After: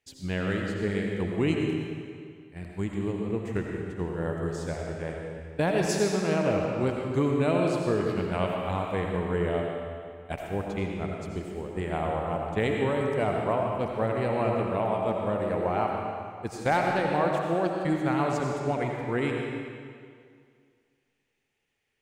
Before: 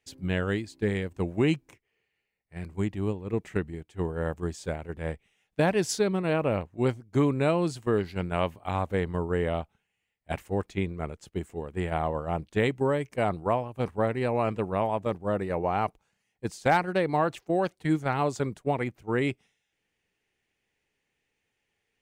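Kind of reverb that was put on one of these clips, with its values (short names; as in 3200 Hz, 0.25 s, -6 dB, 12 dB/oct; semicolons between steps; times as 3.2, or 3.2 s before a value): digital reverb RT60 2.1 s, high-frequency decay 0.9×, pre-delay 45 ms, DRR 0 dB; gain -2.5 dB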